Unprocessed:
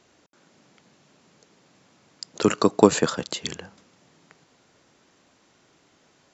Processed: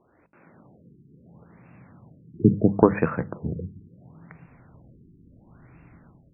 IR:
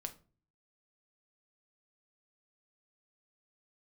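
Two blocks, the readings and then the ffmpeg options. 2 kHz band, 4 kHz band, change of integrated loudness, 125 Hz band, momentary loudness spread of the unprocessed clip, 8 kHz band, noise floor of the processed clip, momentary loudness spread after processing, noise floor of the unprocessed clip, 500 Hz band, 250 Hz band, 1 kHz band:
−3.5 dB, below −40 dB, −0.5 dB, +7.5 dB, 23 LU, can't be measured, −59 dBFS, 15 LU, −62 dBFS, −2.5 dB, +1.5 dB, −3.0 dB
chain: -filter_complex "[0:a]bandreject=frequency=50:width_type=h:width=6,bandreject=frequency=100:width_type=h:width=6,bandreject=frequency=150:width_type=h:width=6,bandreject=frequency=200:width_type=h:width=6,asubboost=boost=10:cutoff=150,dynaudnorm=framelen=120:gausssize=5:maxgain=7dB,asplit=2[link_01][link_02];[1:a]atrim=start_sample=2205,lowshelf=frequency=440:gain=9.5[link_03];[link_02][link_03]afir=irnorm=-1:irlink=0,volume=-12dB[link_04];[link_01][link_04]amix=inputs=2:normalize=0,afftfilt=real='re*lt(b*sr/1024,420*pow(2800/420,0.5+0.5*sin(2*PI*0.73*pts/sr)))':imag='im*lt(b*sr/1024,420*pow(2800/420,0.5+0.5*sin(2*PI*0.73*pts/sr)))':win_size=1024:overlap=0.75,volume=-2.5dB"

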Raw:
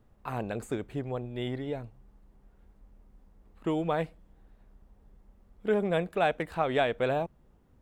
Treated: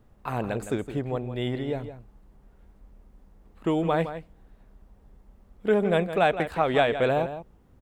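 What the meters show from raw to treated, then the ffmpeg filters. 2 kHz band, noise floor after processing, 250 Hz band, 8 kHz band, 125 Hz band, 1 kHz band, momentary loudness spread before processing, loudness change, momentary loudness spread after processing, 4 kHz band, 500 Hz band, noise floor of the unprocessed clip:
+5.0 dB, −58 dBFS, +5.0 dB, can't be measured, +5.0 dB, +5.0 dB, 11 LU, +5.0 dB, 11 LU, +5.0 dB, +5.0 dB, −63 dBFS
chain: -filter_complex "[0:a]asplit=2[link_01][link_02];[link_02]adelay=163.3,volume=-11dB,highshelf=frequency=4000:gain=-3.67[link_03];[link_01][link_03]amix=inputs=2:normalize=0,volume=4.5dB"

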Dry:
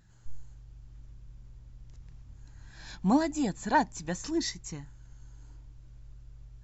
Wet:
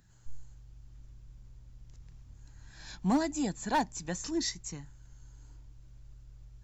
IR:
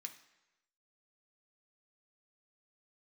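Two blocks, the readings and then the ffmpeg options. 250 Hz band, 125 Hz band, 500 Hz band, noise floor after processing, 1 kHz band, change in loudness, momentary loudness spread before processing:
−3.0 dB, −2.5 dB, −3.0 dB, −56 dBFS, −4.0 dB, −3.0 dB, 18 LU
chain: -filter_complex "[0:a]highshelf=frequency=5900:gain=7,acrossover=split=140[link_01][link_02];[link_02]volume=19.5dB,asoftclip=hard,volume=-19.5dB[link_03];[link_01][link_03]amix=inputs=2:normalize=0,volume=-2.5dB"

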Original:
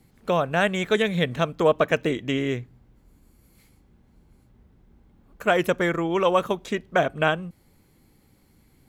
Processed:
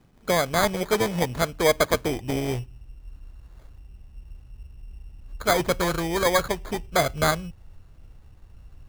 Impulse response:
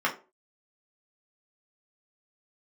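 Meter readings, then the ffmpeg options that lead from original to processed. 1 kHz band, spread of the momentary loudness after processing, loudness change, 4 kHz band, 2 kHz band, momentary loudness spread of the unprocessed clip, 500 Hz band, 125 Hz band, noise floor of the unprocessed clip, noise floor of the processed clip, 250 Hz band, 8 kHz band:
0.0 dB, 8 LU, −0.5 dB, +2.5 dB, −1.5 dB, 7 LU, −1.5 dB, 0.0 dB, −60 dBFS, −52 dBFS, −2.0 dB, +13.0 dB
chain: -filter_complex "[0:a]asplit=2[link_01][link_02];[1:a]atrim=start_sample=2205[link_03];[link_02][link_03]afir=irnorm=-1:irlink=0,volume=-33.5dB[link_04];[link_01][link_04]amix=inputs=2:normalize=0,asubboost=boost=12:cutoff=68,acrusher=samples=16:mix=1:aa=0.000001"

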